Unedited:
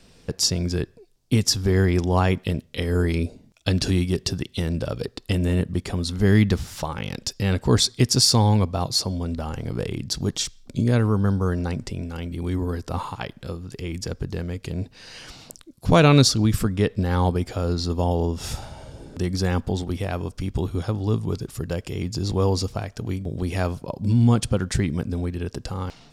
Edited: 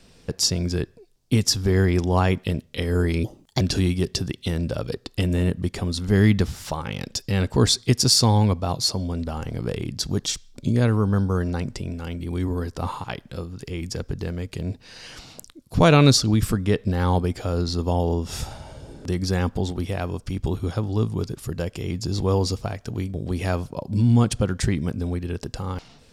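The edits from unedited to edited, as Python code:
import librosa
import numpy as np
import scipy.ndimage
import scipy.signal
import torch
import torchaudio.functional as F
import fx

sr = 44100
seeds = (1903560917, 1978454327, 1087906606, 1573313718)

y = fx.edit(x, sr, fx.speed_span(start_s=3.24, length_s=0.48, speed=1.31), tone=tone)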